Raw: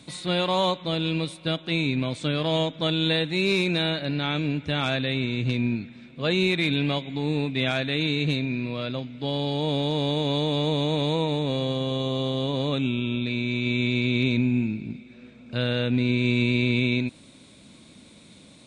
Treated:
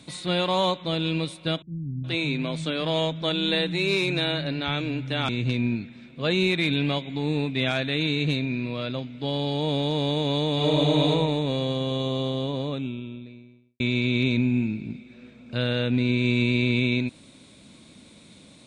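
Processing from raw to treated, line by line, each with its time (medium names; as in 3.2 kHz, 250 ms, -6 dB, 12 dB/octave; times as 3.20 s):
1.62–5.29 s: bands offset in time lows, highs 420 ms, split 200 Hz
10.54–11.09 s: reverb throw, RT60 0.95 s, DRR -1 dB
12.02–13.80 s: studio fade out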